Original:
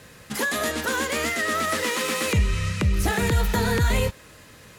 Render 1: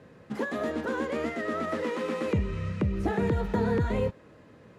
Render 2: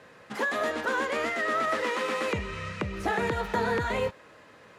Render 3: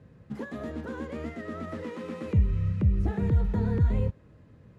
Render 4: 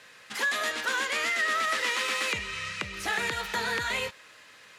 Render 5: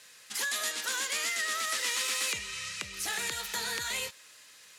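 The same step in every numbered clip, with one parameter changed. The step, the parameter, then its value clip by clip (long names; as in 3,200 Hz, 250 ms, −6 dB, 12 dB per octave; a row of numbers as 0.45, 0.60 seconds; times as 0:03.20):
resonant band-pass, frequency: 310, 790, 110, 2,400, 6,100 Hertz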